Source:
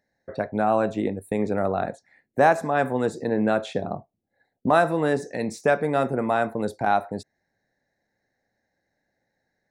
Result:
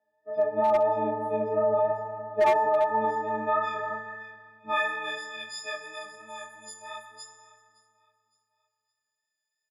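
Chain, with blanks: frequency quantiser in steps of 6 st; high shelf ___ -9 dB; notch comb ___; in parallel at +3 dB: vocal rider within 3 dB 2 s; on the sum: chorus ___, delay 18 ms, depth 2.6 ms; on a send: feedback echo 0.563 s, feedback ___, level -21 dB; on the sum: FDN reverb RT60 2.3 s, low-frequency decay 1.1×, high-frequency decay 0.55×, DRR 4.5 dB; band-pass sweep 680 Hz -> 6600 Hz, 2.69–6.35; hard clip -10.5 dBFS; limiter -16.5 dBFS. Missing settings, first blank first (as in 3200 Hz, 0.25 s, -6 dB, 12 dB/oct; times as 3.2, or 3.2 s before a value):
2100 Hz, 150 Hz, 3 Hz, 36%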